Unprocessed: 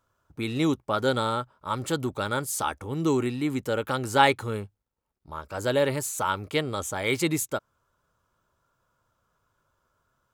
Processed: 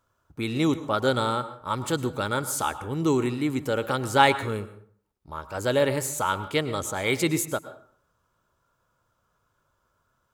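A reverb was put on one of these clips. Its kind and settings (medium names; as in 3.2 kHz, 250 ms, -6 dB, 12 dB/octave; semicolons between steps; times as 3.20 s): plate-style reverb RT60 0.54 s, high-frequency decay 0.6×, pre-delay 95 ms, DRR 13 dB; trim +1 dB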